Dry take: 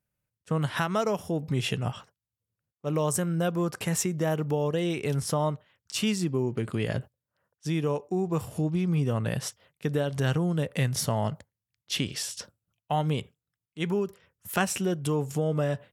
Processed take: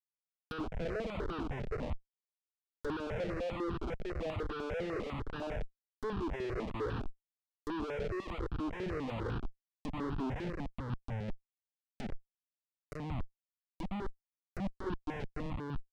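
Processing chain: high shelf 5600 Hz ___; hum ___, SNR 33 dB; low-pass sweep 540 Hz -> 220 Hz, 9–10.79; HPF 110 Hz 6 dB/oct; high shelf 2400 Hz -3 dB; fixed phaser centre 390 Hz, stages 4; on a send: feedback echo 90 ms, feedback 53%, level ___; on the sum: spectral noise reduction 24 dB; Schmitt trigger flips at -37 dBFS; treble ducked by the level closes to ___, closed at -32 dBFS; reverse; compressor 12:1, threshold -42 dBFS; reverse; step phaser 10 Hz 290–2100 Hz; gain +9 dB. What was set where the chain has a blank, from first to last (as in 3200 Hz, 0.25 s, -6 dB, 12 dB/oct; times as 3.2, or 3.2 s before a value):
-9.5 dB, 60 Hz, -14.5 dB, 2500 Hz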